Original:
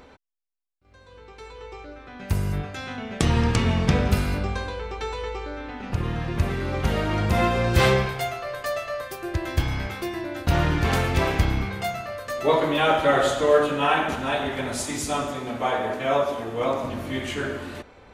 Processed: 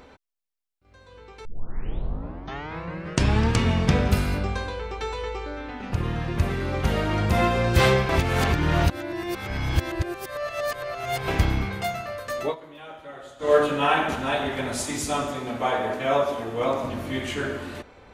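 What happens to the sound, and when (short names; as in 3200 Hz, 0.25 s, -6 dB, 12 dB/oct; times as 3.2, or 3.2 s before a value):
1.45 tape start 2.08 s
8.09–11.28 reverse
12.41–13.53 dip -21.5 dB, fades 0.14 s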